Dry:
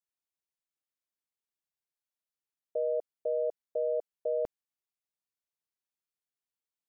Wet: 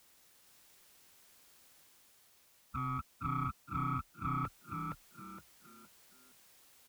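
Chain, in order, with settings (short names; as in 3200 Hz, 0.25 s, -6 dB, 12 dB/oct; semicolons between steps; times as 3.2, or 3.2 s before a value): dynamic EQ 390 Hz, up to -4 dB, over -44 dBFS, Q 2.4; reverse; upward compressor, threshold -47 dBFS; reverse; formant-preserving pitch shift -1.5 st; soft clip -34 dBFS, distortion -14 dB; ring modulator 700 Hz; added noise white -73 dBFS; on a send: frequency-shifting echo 0.466 s, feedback 34%, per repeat +31 Hz, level -3.5 dB; on the sum: gain +4 dB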